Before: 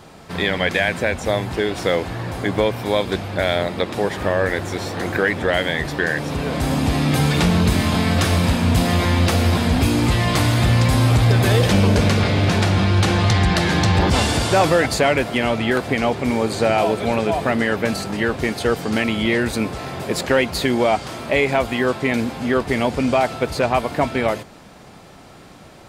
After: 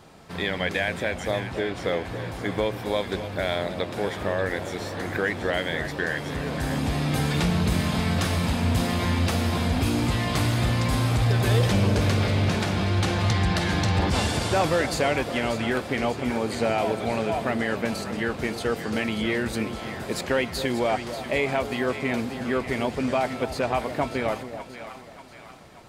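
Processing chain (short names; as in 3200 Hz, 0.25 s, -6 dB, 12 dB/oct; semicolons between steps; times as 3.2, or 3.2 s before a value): 1.39–2.04 high shelf 9300 Hz -> 5800 Hz -11 dB; split-band echo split 780 Hz, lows 0.273 s, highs 0.586 s, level -10.5 dB; gain -7 dB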